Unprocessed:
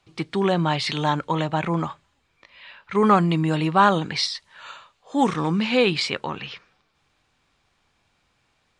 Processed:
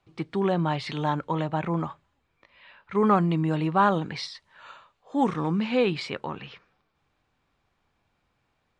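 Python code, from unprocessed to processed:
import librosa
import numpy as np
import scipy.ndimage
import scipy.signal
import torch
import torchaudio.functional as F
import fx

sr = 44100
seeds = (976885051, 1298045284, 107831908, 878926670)

y = fx.high_shelf(x, sr, hz=2500.0, db=-11.0)
y = F.gain(torch.from_numpy(y), -3.0).numpy()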